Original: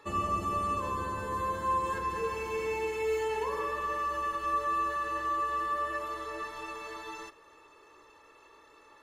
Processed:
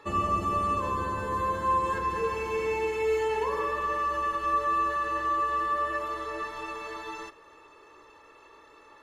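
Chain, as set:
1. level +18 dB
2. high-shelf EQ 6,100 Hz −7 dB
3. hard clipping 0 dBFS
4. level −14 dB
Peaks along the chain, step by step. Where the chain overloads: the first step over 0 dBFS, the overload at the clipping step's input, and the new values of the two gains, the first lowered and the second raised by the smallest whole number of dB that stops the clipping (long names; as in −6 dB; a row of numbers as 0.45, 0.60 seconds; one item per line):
−3.0, −3.0, −3.0, −17.0 dBFS
no step passes full scale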